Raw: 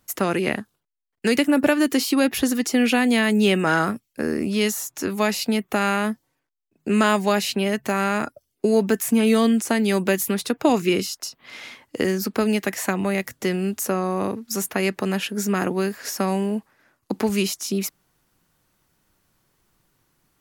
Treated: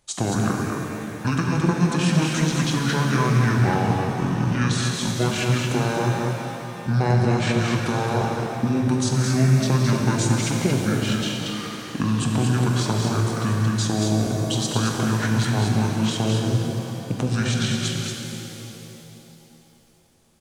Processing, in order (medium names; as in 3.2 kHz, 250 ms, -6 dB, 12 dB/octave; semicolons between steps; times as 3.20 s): compression 3:1, threshold -21 dBFS, peak gain reduction 7 dB; multi-tap echo 184/226 ms -11/-4.5 dB; pitch shift -9.5 st; pitch-shifted reverb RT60 3.1 s, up +7 st, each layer -8 dB, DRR 2 dB